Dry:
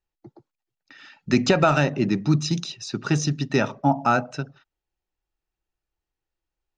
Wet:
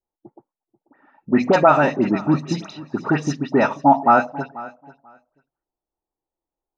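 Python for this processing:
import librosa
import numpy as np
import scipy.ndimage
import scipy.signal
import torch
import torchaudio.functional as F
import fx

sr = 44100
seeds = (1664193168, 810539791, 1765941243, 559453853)

p1 = fx.env_lowpass(x, sr, base_hz=660.0, full_db=-18.0)
p2 = fx.graphic_eq(p1, sr, hz=(250, 1000, 2000), db=(9, 11, 7))
p3 = fx.rider(p2, sr, range_db=3, speed_s=0.5)
p4 = p2 + (p3 * 10.0 ** (-3.0 / 20.0))
p5 = fx.peak_eq(p4, sr, hz=610.0, db=10.5, octaves=1.9)
p6 = fx.dispersion(p5, sr, late='highs', ms=76.0, hz=2000.0)
p7 = p6 + fx.echo_feedback(p6, sr, ms=488, feedback_pct=16, wet_db=-19.0, dry=0)
y = p7 * 10.0 ** (-13.0 / 20.0)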